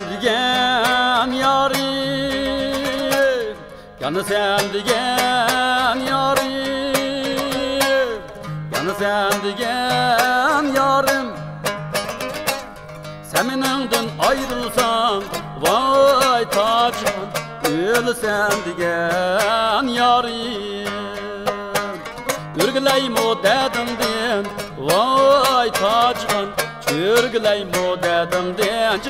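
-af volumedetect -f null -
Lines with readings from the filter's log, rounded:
mean_volume: -18.9 dB
max_volume: -4.1 dB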